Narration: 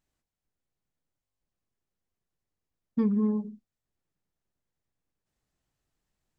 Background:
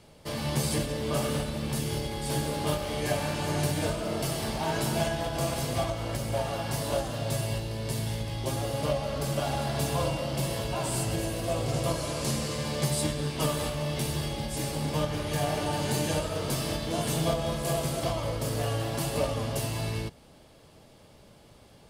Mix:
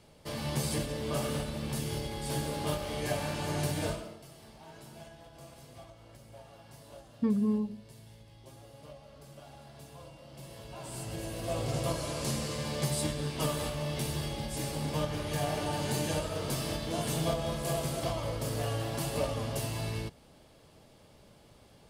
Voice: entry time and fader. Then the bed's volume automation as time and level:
4.25 s, -2.5 dB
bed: 3.93 s -4 dB
4.2 s -21.5 dB
10.13 s -21.5 dB
11.58 s -3.5 dB

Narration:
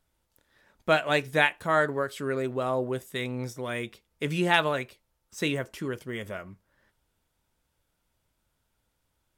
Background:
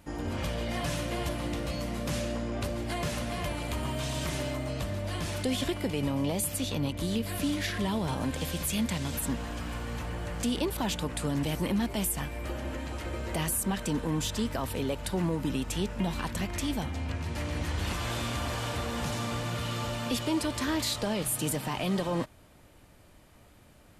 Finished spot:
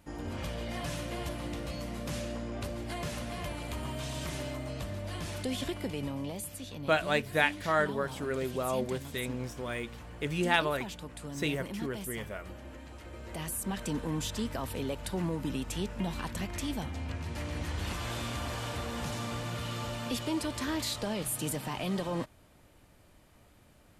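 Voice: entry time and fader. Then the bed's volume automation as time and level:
6.00 s, -4.0 dB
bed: 5.88 s -4.5 dB
6.61 s -11 dB
13.07 s -11 dB
13.82 s -3.5 dB

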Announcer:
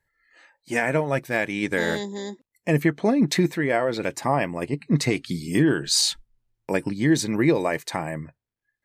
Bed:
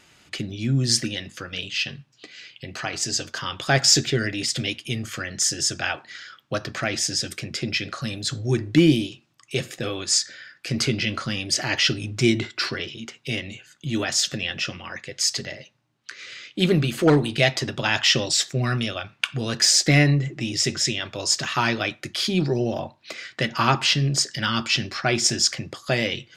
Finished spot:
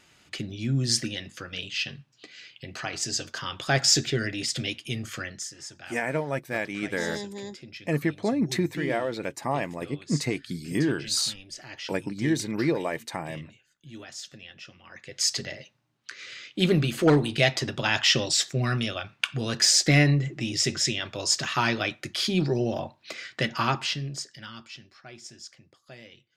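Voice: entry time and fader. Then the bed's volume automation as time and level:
5.20 s, -5.5 dB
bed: 5.27 s -4 dB
5.5 s -18 dB
14.75 s -18 dB
15.21 s -2.5 dB
23.47 s -2.5 dB
24.88 s -24 dB

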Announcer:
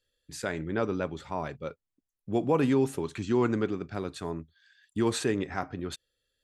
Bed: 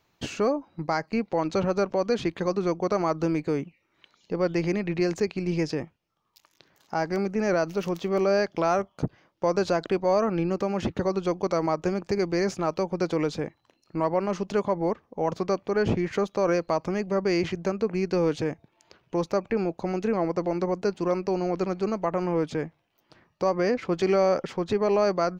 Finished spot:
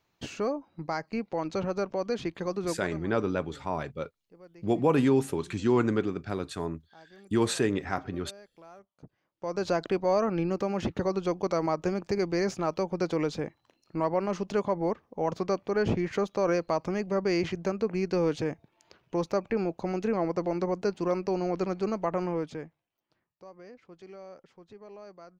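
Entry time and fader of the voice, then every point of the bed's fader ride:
2.35 s, +1.5 dB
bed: 2.72 s -5.5 dB
3.07 s -27 dB
8.91 s -27 dB
9.71 s -2.5 dB
22.2 s -2.5 dB
23.44 s -24.5 dB

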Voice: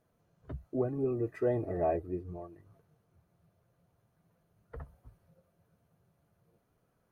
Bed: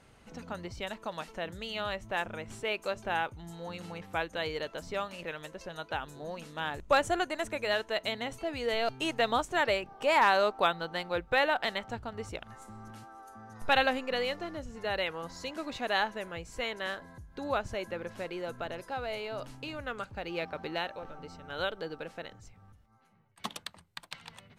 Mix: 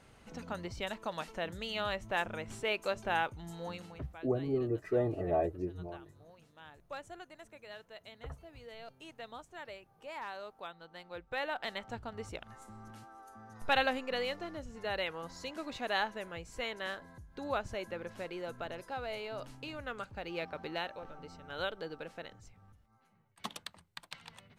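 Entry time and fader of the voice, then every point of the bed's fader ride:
3.50 s, -0.5 dB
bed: 3.7 s -0.5 dB
4.19 s -19 dB
10.63 s -19 dB
11.98 s -3.5 dB

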